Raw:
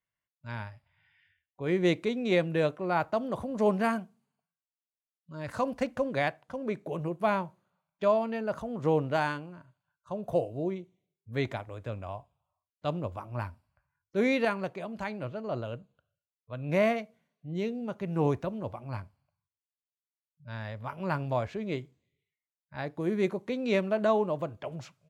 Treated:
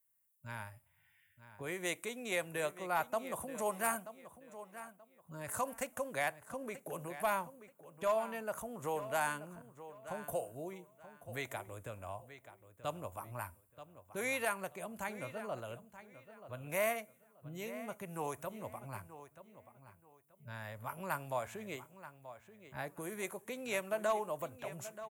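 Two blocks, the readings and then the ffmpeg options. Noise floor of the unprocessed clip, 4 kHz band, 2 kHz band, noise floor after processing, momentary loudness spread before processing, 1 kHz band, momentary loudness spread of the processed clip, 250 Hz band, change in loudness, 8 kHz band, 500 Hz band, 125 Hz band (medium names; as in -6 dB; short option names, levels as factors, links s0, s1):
under -85 dBFS, -6.0 dB, -4.0 dB, -71 dBFS, 14 LU, -5.0 dB, 20 LU, -15.0 dB, -8.5 dB, no reading, -9.5 dB, -13.5 dB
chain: -filter_complex "[0:a]equalizer=f=5700:t=o:w=0.95:g=-6.5,acrossover=split=620|910[s0][s1][s2];[s0]acompressor=threshold=0.00708:ratio=6[s3];[s3][s1][s2]amix=inputs=3:normalize=0,aexciter=amount=15.5:drive=1.5:freq=6500,asoftclip=type=hard:threshold=0.0841,asplit=2[s4][s5];[s5]adelay=931,lowpass=f=5000:p=1,volume=0.211,asplit=2[s6][s7];[s7]adelay=931,lowpass=f=5000:p=1,volume=0.26,asplit=2[s8][s9];[s9]adelay=931,lowpass=f=5000:p=1,volume=0.26[s10];[s4][s6][s8][s10]amix=inputs=4:normalize=0,volume=0.668"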